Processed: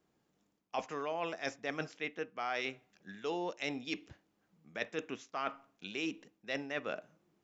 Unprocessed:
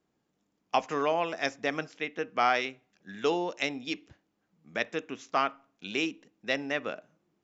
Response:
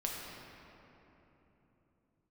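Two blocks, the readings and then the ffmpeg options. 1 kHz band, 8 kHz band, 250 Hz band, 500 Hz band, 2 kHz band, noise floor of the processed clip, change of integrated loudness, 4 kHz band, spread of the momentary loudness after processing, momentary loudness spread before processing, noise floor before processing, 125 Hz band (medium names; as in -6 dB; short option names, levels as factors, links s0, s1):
-10.5 dB, no reading, -6.5 dB, -8.0 dB, -7.5 dB, -78 dBFS, -8.5 dB, -7.5 dB, 6 LU, 11 LU, -78 dBFS, -5.0 dB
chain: -af "areverse,acompressor=threshold=0.0178:ratio=6,areverse,equalizer=f=260:t=o:w=0.31:g=-2.5,volume=1.12"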